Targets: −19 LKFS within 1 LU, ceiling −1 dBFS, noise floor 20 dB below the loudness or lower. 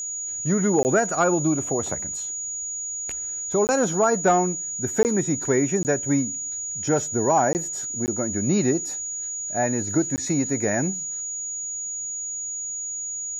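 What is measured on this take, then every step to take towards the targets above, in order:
number of dropouts 7; longest dropout 19 ms; interfering tone 6,800 Hz; level of the tone −28 dBFS; integrated loudness −23.5 LKFS; sample peak −9.0 dBFS; target loudness −19.0 LKFS
→ repair the gap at 0:00.83/0:03.67/0:05.03/0:05.83/0:07.53/0:08.06/0:10.16, 19 ms
notch filter 6,800 Hz, Q 30
level +4.5 dB

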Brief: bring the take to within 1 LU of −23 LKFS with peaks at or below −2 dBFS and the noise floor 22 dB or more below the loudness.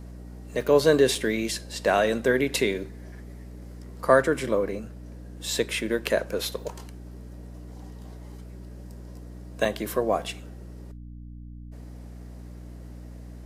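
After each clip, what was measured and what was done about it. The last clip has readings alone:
number of dropouts 4; longest dropout 2.9 ms; mains hum 60 Hz; hum harmonics up to 300 Hz; level of the hum −39 dBFS; integrated loudness −25.0 LKFS; sample peak −6.0 dBFS; target loudness −23.0 LKFS
→ repair the gap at 0:00.61/0:01.15/0:06.39/0:09.65, 2.9 ms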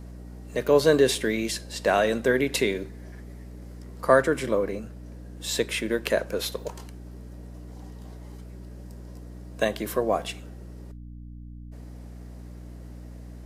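number of dropouts 0; mains hum 60 Hz; hum harmonics up to 300 Hz; level of the hum −39 dBFS
→ hum removal 60 Hz, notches 5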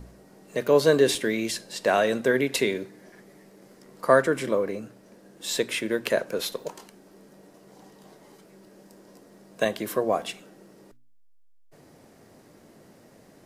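mains hum none found; integrated loudness −25.0 LKFS; sample peak −6.0 dBFS; target loudness −23.0 LKFS
→ level +2 dB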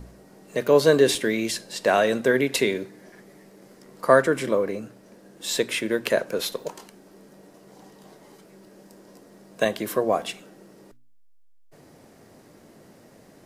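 integrated loudness −23.0 LKFS; sample peak −4.0 dBFS; background noise floor −52 dBFS

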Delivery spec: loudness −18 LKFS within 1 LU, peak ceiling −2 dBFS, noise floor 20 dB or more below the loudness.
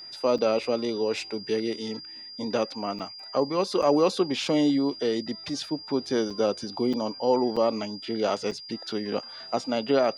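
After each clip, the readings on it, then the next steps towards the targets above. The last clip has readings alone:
number of dropouts 7; longest dropout 5.8 ms; interfering tone 4,800 Hz; level of the tone −40 dBFS; integrated loudness −27.0 LKFS; sample peak −10.0 dBFS; target loudness −18.0 LKFS
→ repair the gap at 0:00.38/0:02.99/0:03.82/0:06.30/0:06.93/0:07.56/0:08.51, 5.8 ms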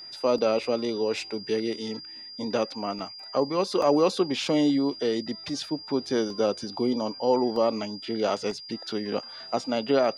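number of dropouts 0; interfering tone 4,800 Hz; level of the tone −40 dBFS
→ notch filter 4,800 Hz, Q 30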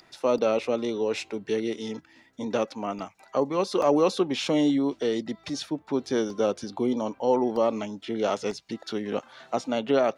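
interfering tone none found; integrated loudness −27.5 LKFS; sample peak −10.0 dBFS; target loudness −18.0 LKFS
→ level +9.5 dB
brickwall limiter −2 dBFS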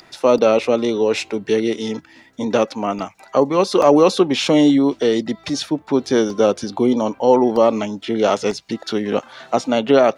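integrated loudness −18.0 LKFS; sample peak −2.0 dBFS; background noise floor −49 dBFS

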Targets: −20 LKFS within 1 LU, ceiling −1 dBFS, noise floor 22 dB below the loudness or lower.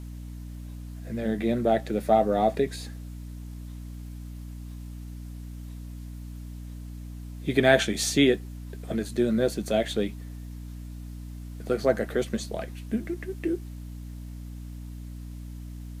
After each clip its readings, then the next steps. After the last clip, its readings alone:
crackle rate 40 per second; mains hum 60 Hz; hum harmonics up to 300 Hz; level of the hum −36 dBFS; integrated loudness −26.0 LKFS; sample peak −5.0 dBFS; target loudness −20.0 LKFS
→ click removal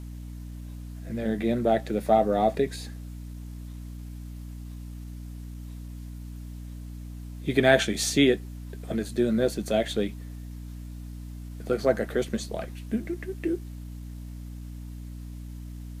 crackle rate 0.19 per second; mains hum 60 Hz; hum harmonics up to 300 Hz; level of the hum −36 dBFS
→ mains-hum notches 60/120/180/240/300 Hz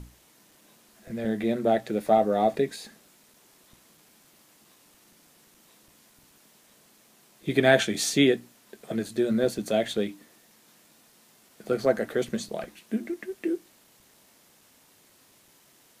mains hum none found; integrated loudness −26.5 LKFS; sample peak −5.0 dBFS; target loudness −20.0 LKFS
→ level +6.5 dB
brickwall limiter −1 dBFS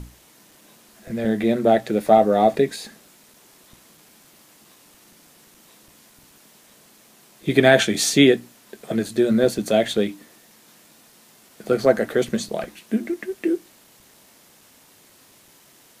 integrated loudness −20.0 LKFS; sample peak −1.0 dBFS; background noise floor −53 dBFS

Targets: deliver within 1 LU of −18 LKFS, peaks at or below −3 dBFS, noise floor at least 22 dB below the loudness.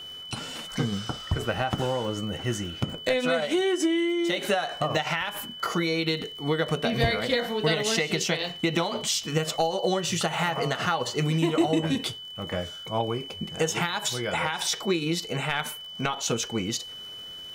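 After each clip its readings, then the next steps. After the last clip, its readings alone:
crackle rate 44 per second; interfering tone 3,000 Hz; level of the tone −38 dBFS; integrated loudness −27.0 LKFS; sample peak −10.5 dBFS; target loudness −18.0 LKFS
→ click removal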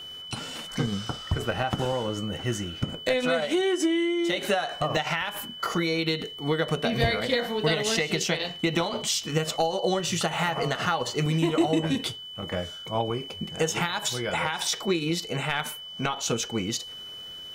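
crackle rate 0.28 per second; interfering tone 3,000 Hz; level of the tone −38 dBFS
→ notch filter 3,000 Hz, Q 30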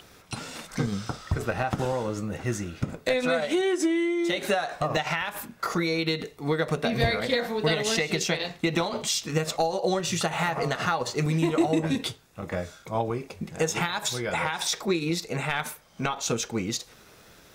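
interfering tone none found; integrated loudness −27.5 LKFS; sample peak −10.0 dBFS; target loudness −18.0 LKFS
→ level +9.5 dB
brickwall limiter −3 dBFS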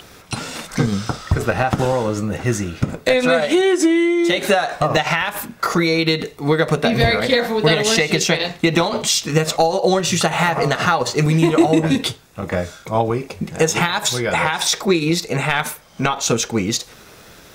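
integrated loudness −18.0 LKFS; sample peak −3.0 dBFS; background noise floor −44 dBFS

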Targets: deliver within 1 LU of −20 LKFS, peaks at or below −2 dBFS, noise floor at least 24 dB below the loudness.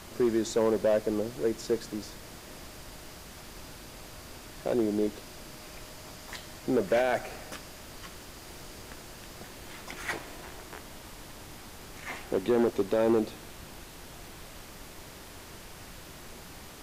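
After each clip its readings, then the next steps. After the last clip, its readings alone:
share of clipped samples 0.6%; peaks flattened at −19.0 dBFS; background noise floor −47 dBFS; target noise floor −54 dBFS; integrated loudness −30.0 LKFS; sample peak −19.0 dBFS; target loudness −20.0 LKFS
→ clipped peaks rebuilt −19 dBFS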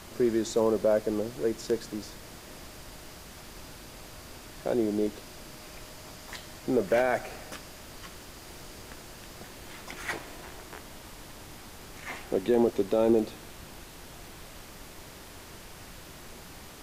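share of clipped samples 0.0%; background noise floor −47 dBFS; target noise floor −53 dBFS
→ noise reduction from a noise print 6 dB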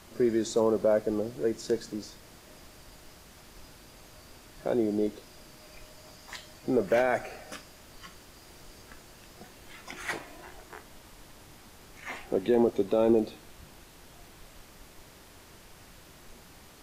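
background noise floor −53 dBFS; integrated loudness −28.5 LKFS; sample peak −12.5 dBFS; target loudness −20.0 LKFS
→ level +8.5 dB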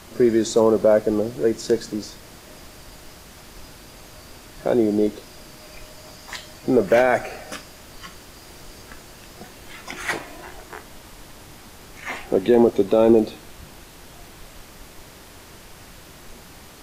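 integrated loudness −20.0 LKFS; sample peak −4.0 dBFS; background noise floor −45 dBFS

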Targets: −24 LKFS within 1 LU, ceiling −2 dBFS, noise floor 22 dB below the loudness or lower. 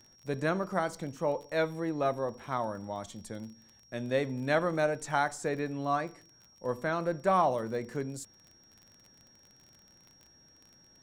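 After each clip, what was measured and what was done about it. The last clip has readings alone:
crackle rate 32 per second; interfering tone 5,600 Hz; level of the tone −59 dBFS; integrated loudness −32.5 LKFS; sample peak −12.5 dBFS; target loudness −24.0 LKFS
→ click removal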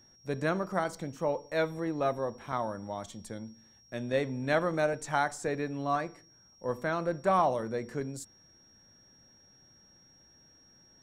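crackle rate 0 per second; interfering tone 5,600 Hz; level of the tone −59 dBFS
→ notch filter 5,600 Hz, Q 30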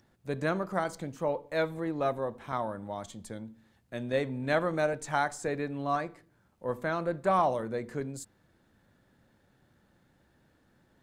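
interfering tone none found; integrated loudness −32.0 LKFS; sample peak −12.5 dBFS; target loudness −24.0 LKFS
→ level +8 dB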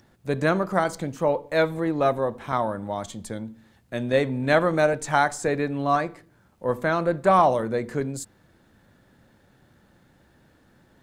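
integrated loudness −24.0 LKFS; sample peak −4.5 dBFS; background noise floor −60 dBFS

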